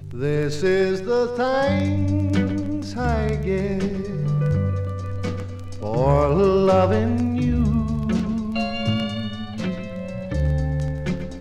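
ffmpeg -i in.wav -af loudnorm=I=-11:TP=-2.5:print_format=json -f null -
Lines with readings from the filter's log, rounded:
"input_i" : "-22.9",
"input_tp" : "-4.8",
"input_lra" : "5.2",
"input_thresh" : "-32.9",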